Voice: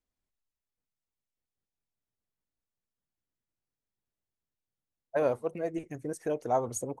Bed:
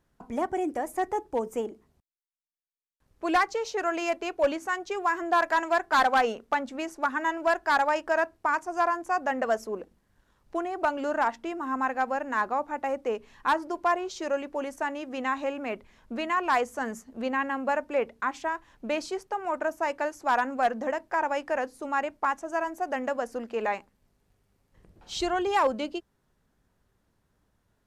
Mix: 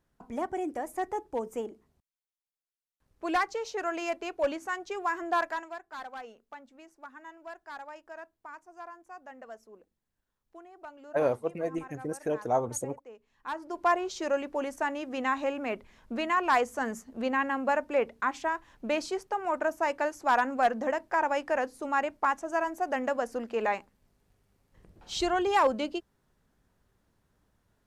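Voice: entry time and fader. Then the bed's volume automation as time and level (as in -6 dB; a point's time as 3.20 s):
6.00 s, +1.0 dB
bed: 5.40 s -4 dB
5.83 s -19.5 dB
13.25 s -19.5 dB
13.87 s 0 dB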